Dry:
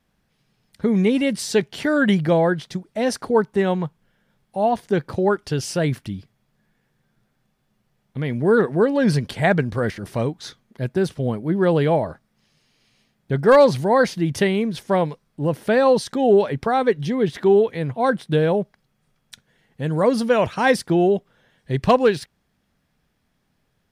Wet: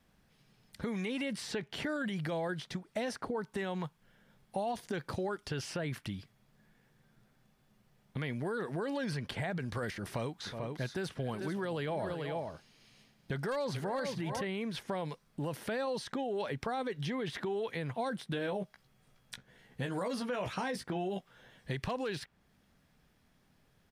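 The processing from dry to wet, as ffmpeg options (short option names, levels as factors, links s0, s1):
-filter_complex "[0:a]asplit=3[s0][s1][s2];[s0]afade=t=out:st=10.45:d=0.02[s3];[s1]aecho=1:1:369|440:0.106|0.237,afade=t=in:st=10.45:d=0.02,afade=t=out:st=14.43:d=0.02[s4];[s2]afade=t=in:st=14.43:d=0.02[s5];[s3][s4][s5]amix=inputs=3:normalize=0,asettb=1/sr,asplit=3[s6][s7][s8];[s6]atrim=end=18.304[s9];[s7]atrim=start=18.3:end=21.71,asetpts=PTS-STARTPTS,afade=t=in:d=0.004:c=qsin,afade=t=out:st=3.406:d=0.004:c=qsin,asplit=2[s10][s11];[s11]adelay=16,volume=0.562[s12];[s10][s12]amix=inputs=2:normalize=0,atrim=end_sample=150381[s13];[s8]atrim=start=21.706[s14];[s9][s13]acrossfade=d=0.004:c1=hsin:c2=qsin[s15];[s15][s14]acrossfade=d=0.004:c1=qsin:c2=hsin,alimiter=limit=0.15:level=0:latency=1:release=39,acrossover=split=810|3000[s16][s17][s18];[s16]acompressor=threshold=0.0126:ratio=4[s19];[s17]acompressor=threshold=0.00794:ratio=4[s20];[s18]acompressor=threshold=0.00316:ratio=4[s21];[s19][s20][s21]amix=inputs=3:normalize=0"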